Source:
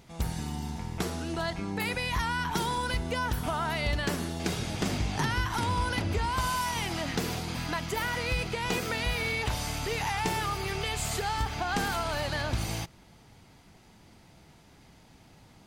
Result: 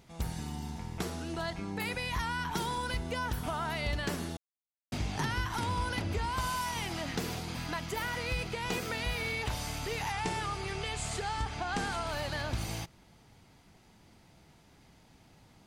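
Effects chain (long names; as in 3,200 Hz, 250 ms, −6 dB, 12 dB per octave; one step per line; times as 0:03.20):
0:04.37–0:04.92: silence
0:10.12–0:12.07: Chebyshev low-pass filter 9,400 Hz, order 3
level −4 dB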